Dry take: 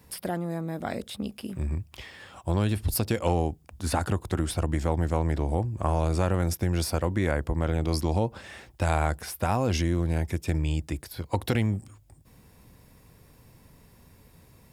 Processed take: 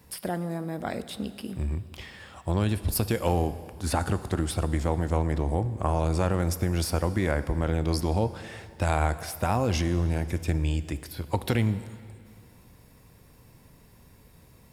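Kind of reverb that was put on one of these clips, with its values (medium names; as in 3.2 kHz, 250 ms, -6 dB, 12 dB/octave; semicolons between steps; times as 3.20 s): plate-style reverb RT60 2.3 s, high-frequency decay 0.95×, DRR 12.5 dB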